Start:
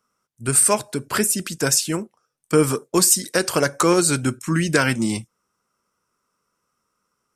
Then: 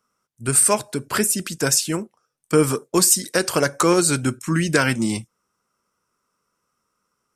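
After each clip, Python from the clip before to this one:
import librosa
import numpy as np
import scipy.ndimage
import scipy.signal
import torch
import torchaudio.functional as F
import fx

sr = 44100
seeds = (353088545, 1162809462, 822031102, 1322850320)

y = x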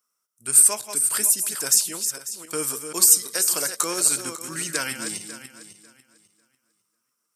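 y = fx.reverse_delay_fb(x, sr, ms=273, feedback_pct=45, wet_db=-8.0)
y = fx.riaa(y, sr, side='recording')
y = y * librosa.db_to_amplitude(-10.5)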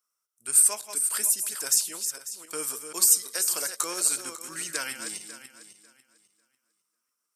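y = fx.highpass(x, sr, hz=420.0, slope=6)
y = y * librosa.db_to_amplitude(-4.5)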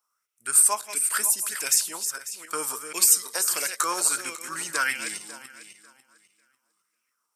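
y = fx.bell_lfo(x, sr, hz=1.5, low_hz=850.0, high_hz=2500.0, db=13)
y = y * librosa.db_to_amplitude(1.0)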